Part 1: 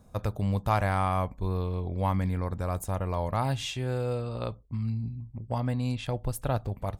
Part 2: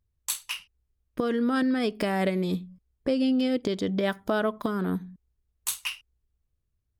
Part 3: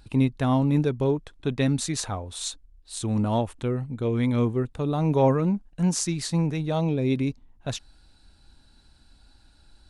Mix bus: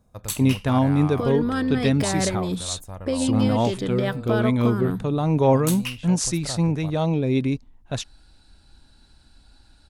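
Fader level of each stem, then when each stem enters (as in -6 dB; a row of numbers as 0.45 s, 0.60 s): -6.5 dB, +0.5 dB, +2.5 dB; 0.00 s, 0.00 s, 0.25 s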